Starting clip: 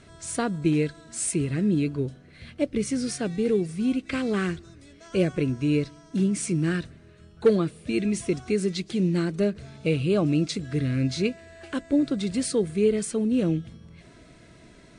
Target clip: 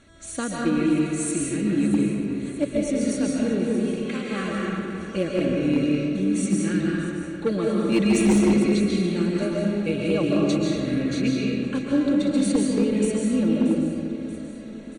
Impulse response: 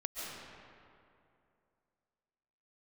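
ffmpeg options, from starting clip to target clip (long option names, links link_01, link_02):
-filter_complex "[0:a]asettb=1/sr,asplit=3[link_01][link_02][link_03];[link_01]atrim=end=3.724[link_04];[link_02]atrim=start=3.72:end=4.31,asetpts=PTS-STARTPTS,afade=type=in:duration=0.004:curve=qsin,afade=type=out:start_time=0.586:duration=0.004:curve=qsin,highpass=660[link_05];[link_03]atrim=start=4.306[link_06];[link_04][link_05]acrossfade=duration=0.004:curve1=hsin:curve2=qsin[link_07];[link_07][link_06]acrossfade=duration=0.004:curve1=qsin:curve2=hsin,asettb=1/sr,asplit=3[link_08][link_09][link_10];[link_08]atrim=end=7.924[link_11];[link_09]atrim=start=7.92:end=8.51,asetpts=PTS-STARTPTS,afade=type=in:duration=0.004:curve=qsin,afade=type=out:start_time=0.586:duration=0.004:curve=qsin,acontrast=82[link_12];[link_10]atrim=start=8.506[link_13];[link_11][link_12]acrossfade=duration=0.004:curve1=hsin:curve2=qsin[link_14];[link_14][link_13]acrossfade=duration=0.004:curve1=qsin:curve2=hsin,asuperstop=centerf=5100:order=8:qfactor=6.6,aecho=1:1:3.6:0.53,aecho=1:1:631|1262|1893|2524|3155|3786:0.168|0.101|0.0604|0.0363|0.0218|0.0131[link_15];[1:a]atrim=start_sample=2205[link_16];[link_15][link_16]afir=irnorm=-1:irlink=0,asoftclip=type=hard:threshold=-13dB"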